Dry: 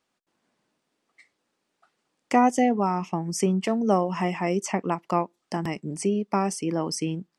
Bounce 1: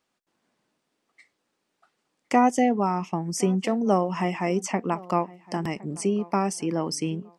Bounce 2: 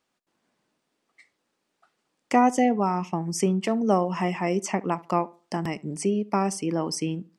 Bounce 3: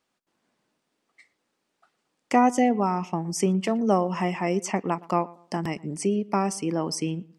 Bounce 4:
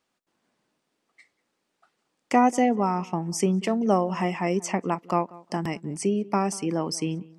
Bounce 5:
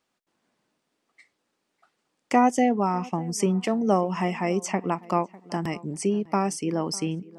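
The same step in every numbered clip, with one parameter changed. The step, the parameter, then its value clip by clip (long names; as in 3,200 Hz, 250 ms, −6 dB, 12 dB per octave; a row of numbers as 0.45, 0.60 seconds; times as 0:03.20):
feedback echo with a low-pass in the loop, delay time: 1,063, 72, 117, 188, 600 milliseconds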